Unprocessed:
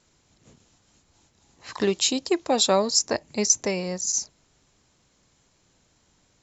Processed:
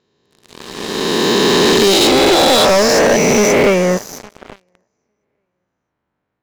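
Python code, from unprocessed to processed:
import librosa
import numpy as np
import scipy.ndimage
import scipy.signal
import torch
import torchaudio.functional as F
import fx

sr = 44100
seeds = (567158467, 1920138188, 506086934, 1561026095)

p1 = fx.spec_swells(x, sr, rise_s=2.73)
p2 = fx.highpass(p1, sr, hz=140.0, slope=6)
p3 = fx.high_shelf(p2, sr, hz=3600.0, db=-4.0)
p4 = fx.echo_feedback(p3, sr, ms=856, feedback_pct=21, wet_db=-23.0)
p5 = fx.filter_sweep_lowpass(p4, sr, from_hz=4000.0, to_hz=1700.0, start_s=2.1, end_s=4.05, q=1.0)
p6 = fx.leveller(p5, sr, passes=5)
p7 = fx.rider(p6, sr, range_db=10, speed_s=0.5)
p8 = p6 + (p7 * 10.0 ** (0.0 / 20.0))
y = p8 * 10.0 ** (-8.0 / 20.0)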